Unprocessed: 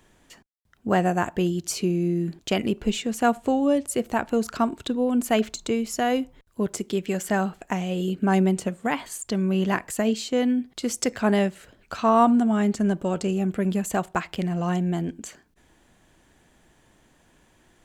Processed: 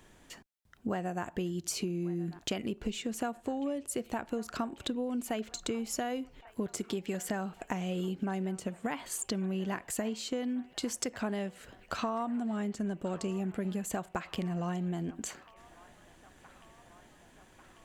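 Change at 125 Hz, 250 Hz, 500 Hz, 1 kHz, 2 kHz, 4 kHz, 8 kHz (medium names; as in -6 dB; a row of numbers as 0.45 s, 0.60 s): -10.5 dB, -11.0 dB, -12.0 dB, -13.0 dB, -11.0 dB, -7.0 dB, -5.5 dB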